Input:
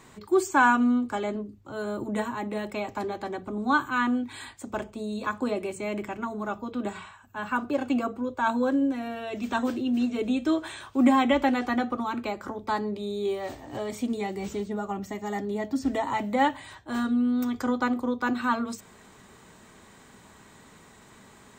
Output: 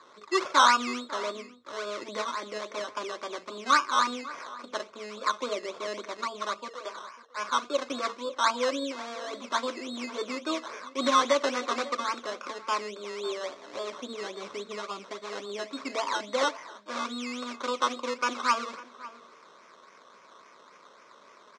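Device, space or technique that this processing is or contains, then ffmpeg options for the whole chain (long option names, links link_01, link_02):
circuit-bent sampling toy: -filter_complex "[0:a]bandreject=frequency=820:width=12,asettb=1/sr,asplit=3[link_01][link_02][link_03];[link_01]atrim=end=6.684[link_04];[link_02]atrim=start=6.68:end=7.37,asetpts=PTS-STARTPTS,afade=type=in:duration=0.004:curve=qsin,afade=type=out:start_time=0.686:duration=0.004:curve=qsin,highpass=frequency=410:width=0.5412,highpass=frequency=410:width=1.3066[link_05];[link_03]atrim=start=7.366[link_06];[link_04][link_05]acrossfade=duration=0.004:curve1=hsin:curve2=qsin[link_07];[link_07][link_06]acrossfade=duration=0.004:curve1=qsin:curve2=hsin,acrusher=samples=15:mix=1:aa=0.000001:lfo=1:lforange=9:lforate=3.6,highpass=530,equalizer=frequency=540:width_type=q:width=4:gain=5,equalizer=frequency=780:width_type=q:width=4:gain=-9,equalizer=frequency=1100:width_type=q:width=4:gain=7,equalizer=frequency=1800:width_type=q:width=4:gain=-6,equalizer=frequency=2900:width_type=q:width=4:gain=-9,equalizer=frequency=4700:width_type=q:width=4:gain=-7,lowpass=frequency=5300:width=0.5412,lowpass=frequency=5300:width=1.3066,highshelf=frequency=2700:gain=9,asplit=2[link_08][link_09];[link_09]adelay=548.1,volume=-17dB,highshelf=frequency=4000:gain=-12.3[link_10];[link_08][link_10]amix=inputs=2:normalize=0"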